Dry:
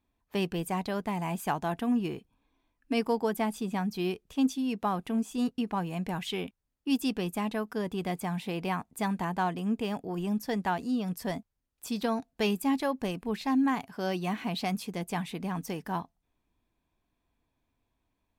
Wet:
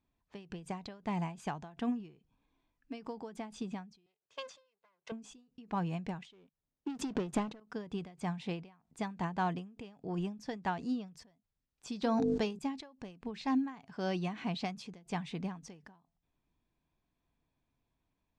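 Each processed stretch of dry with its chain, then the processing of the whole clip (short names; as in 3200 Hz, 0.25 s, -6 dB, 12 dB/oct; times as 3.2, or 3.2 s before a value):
4.06–5.12 minimum comb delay 1.9 ms + weighting filter A + gate -51 dBFS, range -9 dB
6.22–7.6 bell 400 Hz +8 dB 2.9 oct + sample leveller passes 3
12.03–12.59 bell 2400 Hz -5 dB 1.4 oct + notches 50/100/150/200/250/300/350/400/450/500 Hz + fast leveller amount 100%
whole clip: LPF 7000 Hz 24 dB/oct; bell 150 Hz +6.5 dB 0.49 oct; ending taper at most 130 dB/s; gain -4 dB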